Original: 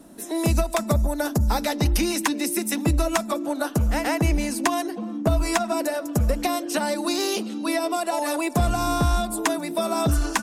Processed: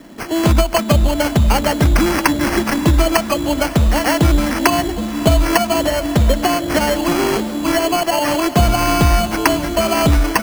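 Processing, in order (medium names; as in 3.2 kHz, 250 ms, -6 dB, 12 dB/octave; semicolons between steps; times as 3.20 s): sample-and-hold 12×; echo that smears into a reverb 580 ms, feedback 44%, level -14 dB; trim +8 dB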